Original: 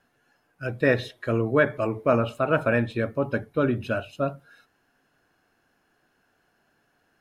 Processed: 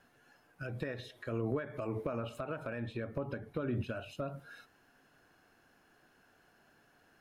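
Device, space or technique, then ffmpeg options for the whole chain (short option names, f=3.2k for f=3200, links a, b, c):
de-esser from a sidechain: -filter_complex "[0:a]asplit=2[a][b];[b]highpass=f=5.1k:p=1,apad=whole_len=317922[c];[a][c]sidechaincompress=threshold=-54dB:ratio=5:attack=2:release=92,asettb=1/sr,asplit=3[d][e][f];[d]atrim=end=2.804[g];[e]atrim=start=2.8:end=3.89,asetpts=PTS-STARTPTS,afade=t=in:d=0.004:c=qsin,afade=t=out:st=1.086:d=0.004:c=qsin,highshelf=f=4.8k:g=-6[h];[f]atrim=start=3.886[i];[g][h]acrossfade=d=0.004:c1=hsin:c2=qsin[j];[j][i]acrossfade=d=0.004:c1=qsin:c2=hsin,volume=1.5dB"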